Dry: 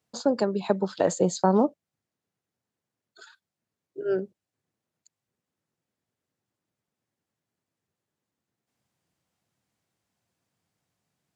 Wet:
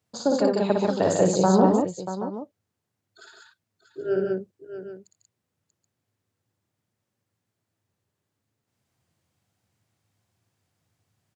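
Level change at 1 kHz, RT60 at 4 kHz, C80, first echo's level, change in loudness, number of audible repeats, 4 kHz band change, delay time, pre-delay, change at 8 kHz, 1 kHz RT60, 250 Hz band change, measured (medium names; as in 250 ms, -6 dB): +3.5 dB, no reverb, no reverb, -4.0 dB, +3.0 dB, 5, +3.5 dB, 58 ms, no reverb, +3.5 dB, no reverb, +4.5 dB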